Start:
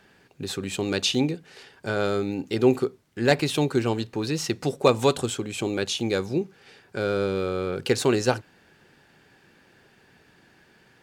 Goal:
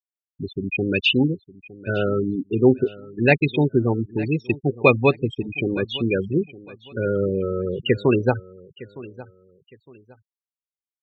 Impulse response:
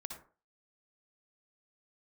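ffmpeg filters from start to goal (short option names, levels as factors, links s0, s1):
-af "afftfilt=real='re*gte(hypot(re,im),0.112)':imag='im*gte(hypot(re,im),0.112)':win_size=1024:overlap=0.75,lowpass=f=2600:t=q:w=10,lowshelf=f=400:g=8,aecho=1:1:911|1822:0.112|0.0325,volume=0.891"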